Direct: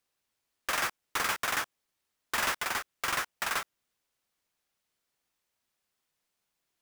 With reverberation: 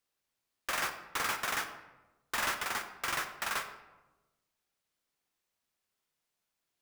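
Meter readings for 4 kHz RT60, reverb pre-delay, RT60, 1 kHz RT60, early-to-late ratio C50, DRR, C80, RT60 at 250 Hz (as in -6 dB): 0.60 s, 15 ms, 1.1 s, 1.0 s, 9.5 dB, 7.0 dB, 11.5 dB, 1.4 s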